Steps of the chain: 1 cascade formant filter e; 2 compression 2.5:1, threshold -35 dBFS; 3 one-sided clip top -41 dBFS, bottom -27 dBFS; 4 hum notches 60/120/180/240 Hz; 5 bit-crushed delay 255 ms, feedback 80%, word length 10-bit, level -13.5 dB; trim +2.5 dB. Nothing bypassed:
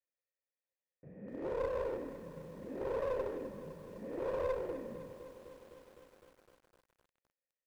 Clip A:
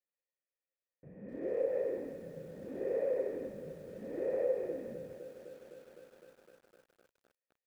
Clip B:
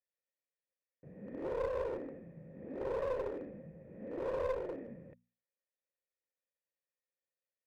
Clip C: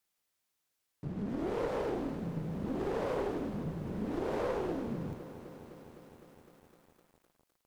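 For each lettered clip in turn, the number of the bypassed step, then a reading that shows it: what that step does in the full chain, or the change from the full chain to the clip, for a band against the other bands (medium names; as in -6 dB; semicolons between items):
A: 3, distortion -9 dB; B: 5, momentary loudness spread change -2 LU; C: 1, 125 Hz band +7.0 dB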